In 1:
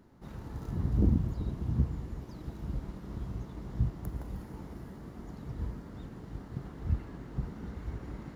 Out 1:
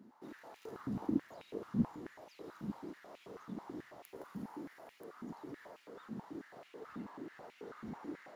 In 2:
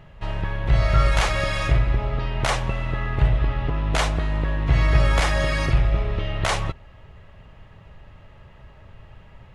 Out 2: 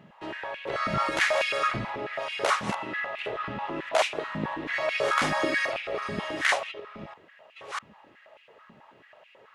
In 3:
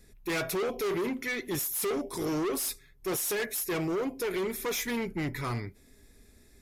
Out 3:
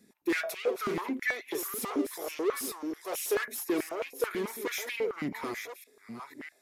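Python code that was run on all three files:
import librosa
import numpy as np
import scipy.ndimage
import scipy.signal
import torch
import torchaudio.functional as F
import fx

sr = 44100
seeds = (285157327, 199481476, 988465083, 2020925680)

y = fx.reverse_delay(x, sr, ms=649, wet_db=-9)
y = fx.filter_held_highpass(y, sr, hz=9.2, low_hz=220.0, high_hz=2500.0)
y = y * librosa.db_to_amplitude(-5.0)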